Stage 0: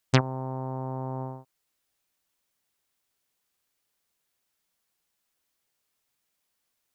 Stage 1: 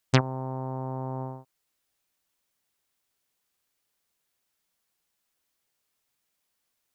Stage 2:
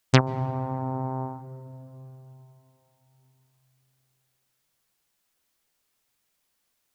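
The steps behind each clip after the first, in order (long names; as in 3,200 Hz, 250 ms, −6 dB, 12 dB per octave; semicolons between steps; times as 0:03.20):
no processing that can be heard
on a send at −18 dB: RIAA equalisation playback + convolution reverb RT60 3.7 s, pre-delay 123 ms; on the sum: level +3.5 dB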